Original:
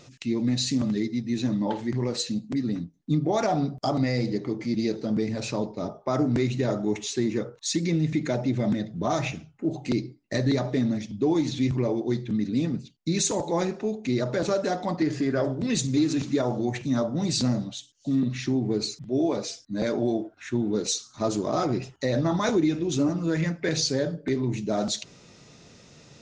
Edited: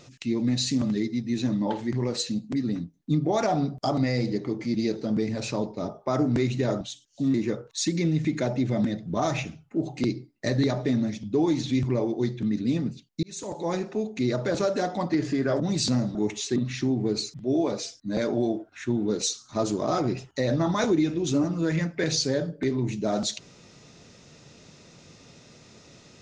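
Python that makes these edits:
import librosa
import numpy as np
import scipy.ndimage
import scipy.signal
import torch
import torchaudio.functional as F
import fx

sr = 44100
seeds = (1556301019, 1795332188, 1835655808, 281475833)

y = fx.edit(x, sr, fx.swap(start_s=6.81, length_s=0.41, other_s=17.68, other_length_s=0.53),
    fx.fade_in_span(start_s=13.11, length_s=0.89, curve='qsin'),
    fx.cut(start_s=15.48, length_s=1.65), tone=tone)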